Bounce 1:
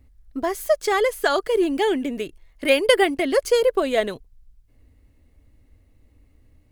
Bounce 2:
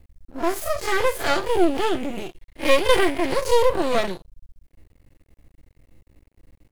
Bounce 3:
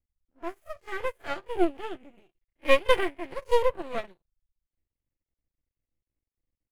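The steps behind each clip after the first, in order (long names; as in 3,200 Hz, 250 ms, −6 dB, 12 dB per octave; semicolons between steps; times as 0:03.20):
spectrum smeared in time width 88 ms; comb filter 5.8 ms, depth 48%; half-wave rectification; level +7 dB
high shelf with overshoot 3,400 Hz −6 dB, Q 1.5; expander for the loud parts 2.5 to 1, over −32 dBFS; level −2 dB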